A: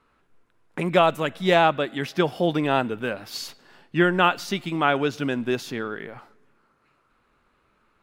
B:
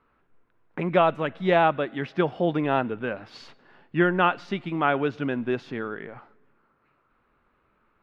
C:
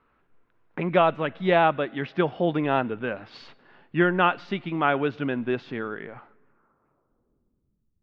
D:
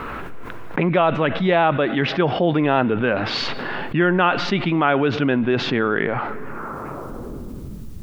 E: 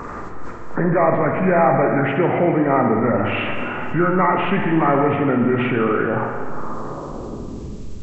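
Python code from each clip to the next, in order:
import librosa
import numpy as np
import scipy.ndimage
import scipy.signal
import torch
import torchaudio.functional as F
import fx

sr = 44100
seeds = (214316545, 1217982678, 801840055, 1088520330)

y1 = scipy.signal.sosfilt(scipy.signal.butter(2, 2400.0, 'lowpass', fs=sr, output='sos'), x)
y1 = y1 * 10.0 ** (-1.5 / 20.0)
y2 = fx.filter_sweep_lowpass(y1, sr, from_hz=4100.0, to_hz=130.0, start_s=6.08, end_s=7.89, q=1.0)
y3 = fx.env_flatten(y2, sr, amount_pct=70)
y3 = y3 * 10.0 ** (1.0 / 20.0)
y4 = fx.freq_compress(y3, sr, knee_hz=1000.0, ratio=1.5)
y4 = fx.rev_spring(y4, sr, rt60_s=1.8, pass_ms=(49, 58), chirp_ms=35, drr_db=2.5)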